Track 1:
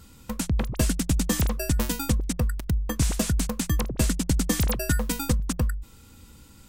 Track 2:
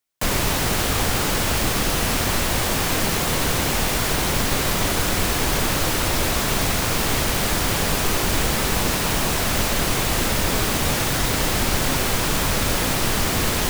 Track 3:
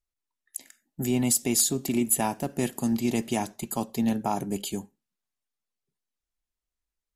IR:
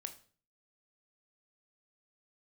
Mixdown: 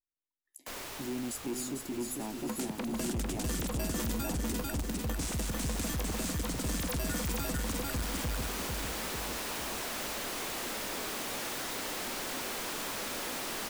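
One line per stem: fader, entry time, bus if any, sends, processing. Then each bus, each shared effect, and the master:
+2.5 dB, 2.20 s, bus A, no send, echo send −9.5 dB, no processing
−13.0 dB, 0.45 s, bus A, send −13.5 dB, no echo send, automatic ducking −18 dB, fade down 1.85 s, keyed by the third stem
−12.5 dB, 0.00 s, no bus, no send, echo send −5.5 dB, parametric band 310 Hz +12.5 dB 0.77 octaves; tuned comb filter 72 Hz, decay 0.15 s, harmonics all, mix 60%
bus A: 0.0 dB, high-pass filter 200 Hz 24 dB per octave; downward compressor 3 to 1, threshold −32 dBFS, peak gain reduction 11.5 dB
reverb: on, RT60 0.45 s, pre-delay 18 ms
echo: repeating echo 448 ms, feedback 50%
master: soft clipping −29 dBFS, distortion −10 dB

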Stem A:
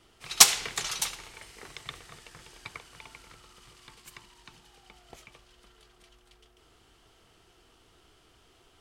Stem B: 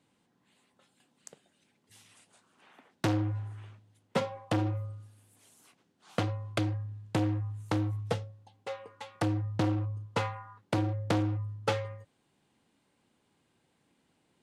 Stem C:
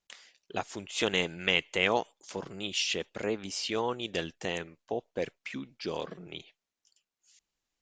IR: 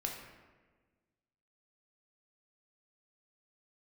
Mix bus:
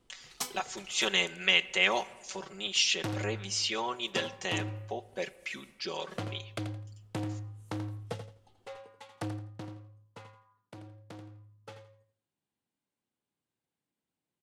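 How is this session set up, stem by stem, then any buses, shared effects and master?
−2.0 dB, 0.00 s, send −12 dB, no echo send, tilt shelving filter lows +7 dB, about 1,100 Hz; tuned comb filter 250 Hz, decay 0.4 s, harmonics all, mix 80%; reverb reduction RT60 0.57 s; automatic ducking −7 dB, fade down 0.45 s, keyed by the third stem
0:09.27 −7 dB → 0:09.85 −19.5 dB, 0.00 s, no send, echo send −9.5 dB, no processing
−1.0 dB, 0.00 s, send −14 dB, no echo send, noise gate with hold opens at −54 dBFS; low-shelf EQ 440 Hz −12 dB; comb filter 5.3 ms, depth 80%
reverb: on, RT60 1.4 s, pre-delay 3 ms
echo: repeating echo 84 ms, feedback 24%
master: high-shelf EQ 6,000 Hz +4.5 dB

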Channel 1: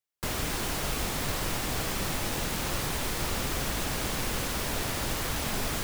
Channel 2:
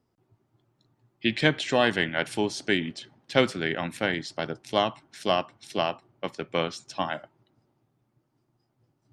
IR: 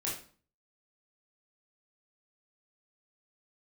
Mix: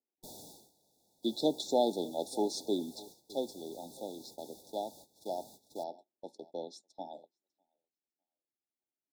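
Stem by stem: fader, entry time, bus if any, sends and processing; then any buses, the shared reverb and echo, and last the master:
−2.0 dB, 0.00 s, no send, no echo send, high-pass filter 190 Hz 12 dB per octave; tube saturation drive 41 dB, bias 0.8; automatic ducking −10 dB, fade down 0.70 s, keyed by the second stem
0:02.83 −4 dB → 0:03.21 −12 dB, 0.00 s, no send, echo send −21 dB, high-pass filter 240 Hz 24 dB per octave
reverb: not used
echo: repeating echo 603 ms, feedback 21%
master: noise gate −51 dBFS, range −17 dB; linear-phase brick-wall band-stop 920–3,400 Hz

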